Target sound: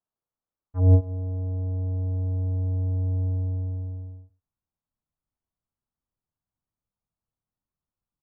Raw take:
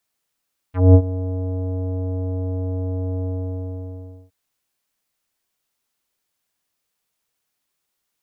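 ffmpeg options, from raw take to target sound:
-filter_complex "[0:a]lowpass=f=1200:w=0.5412,lowpass=f=1200:w=1.3066,asubboost=boost=5:cutoff=190,asplit=2[s0][s1];[s1]aecho=0:1:103:0.0891[s2];[s0][s2]amix=inputs=2:normalize=0,volume=0.355"

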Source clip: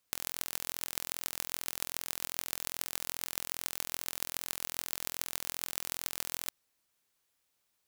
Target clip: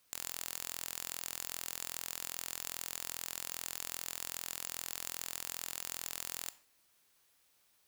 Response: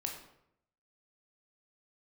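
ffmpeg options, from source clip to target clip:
-filter_complex "[0:a]bandreject=f=7200:w=24,asoftclip=type=tanh:threshold=0.0944,asplit=2[s0][s1];[1:a]atrim=start_sample=2205,afade=t=out:st=0.21:d=0.01,atrim=end_sample=9702,lowshelf=f=330:g=-11[s2];[s1][s2]afir=irnorm=-1:irlink=0,volume=0.422[s3];[s0][s3]amix=inputs=2:normalize=0,volume=1.68"

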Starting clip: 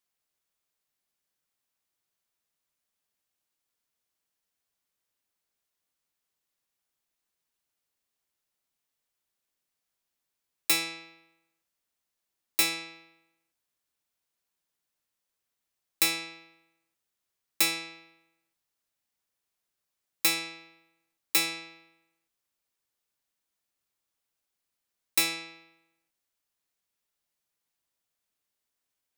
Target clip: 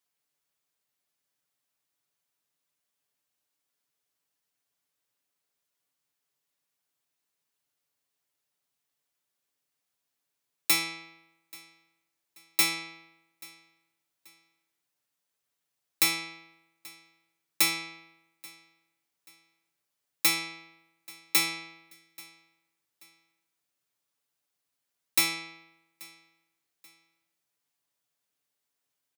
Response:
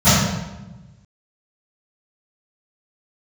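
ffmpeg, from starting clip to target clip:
-af "highpass=72,aecho=1:1:7:0.5,aecho=1:1:833|1666:0.0708|0.0248"

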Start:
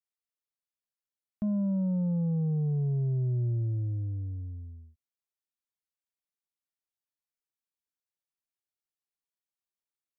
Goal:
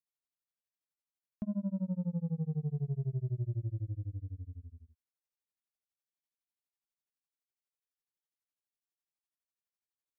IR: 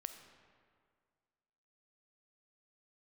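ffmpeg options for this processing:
-af "tremolo=f=12:d=0.99,volume=0.75"

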